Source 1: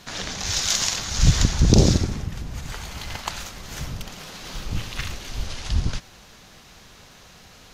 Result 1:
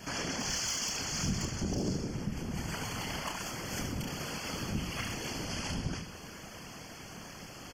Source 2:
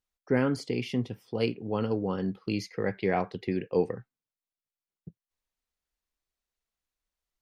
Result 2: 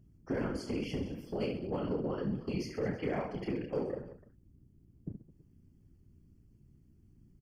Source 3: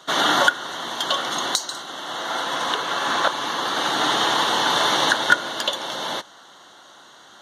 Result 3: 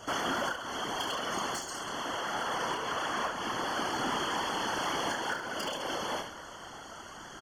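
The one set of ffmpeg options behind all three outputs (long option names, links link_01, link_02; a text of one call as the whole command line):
ffmpeg -i in.wav -filter_complex "[0:a]highpass=160,lowshelf=frequency=350:gain=8,asplit=2[link_01][link_02];[link_02]alimiter=limit=-11dB:level=0:latency=1:release=410,volume=1dB[link_03];[link_01][link_03]amix=inputs=2:normalize=0,acompressor=threshold=-28dB:ratio=2.5,asoftclip=type=hard:threshold=-18dB,aecho=1:1:30|72|130.8|213.1|328.4:0.631|0.398|0.251|0.158|0.1,aeval=exprs='val(0)+0.00251*(sin(2*PI*60*n/s)+sin(2*PI*2*60*n/s)/2+sin(2*PI*3*60*n/s)/3+sin(2*PI*4*60*n/s)/4+sin(2*PI*5*60*n/s)/5)':channel_layout=same,afftfilt=real='hypot(re,im)*cos(2*PI*random(0))':imag='hypot(re,im)*sin(2*PI*random(1))':win_size=512:overlap=0.75,aeval=exprs='0.168*(cos(1*acos(clip(val(0)/0.168,-1,1)))-cos(1*PI/2))+0.0106*(cos(5*acos(clip(val(0)/0.168,-1,1)))-cos(5*PI/2))':channel_layout=same,asuperstop=centerf=3800:order=12:qfactor=4.3,volume=-4dB" out.wav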